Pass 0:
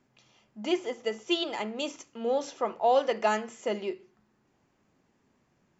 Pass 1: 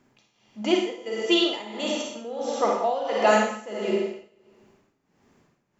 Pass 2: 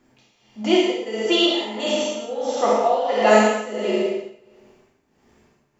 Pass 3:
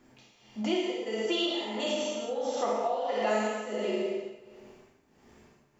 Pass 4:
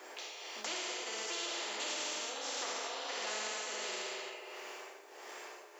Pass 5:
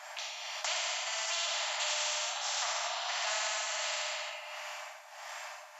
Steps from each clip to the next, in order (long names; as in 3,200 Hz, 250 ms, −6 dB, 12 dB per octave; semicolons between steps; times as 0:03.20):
four-comb reverb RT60 1.2 s, DRR −1.5 dB; amplitude tremolo 1.5 Hz, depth 82%; level +5.5 dB
reverb whose tail is shaped and stops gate 240 ms falling, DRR −3 dB
downward compressor 2.5 to 1, threshold −32 dBFS, peak gain reduction 15 dB
Butterworth high-pass 380 Hz 48 dB per octave; every bin compressed towards the loudest bin 4 to 1; level −8.5 dB
linear-phase brick-wall band-pass 580–14,000 Hz; level +5.5 dB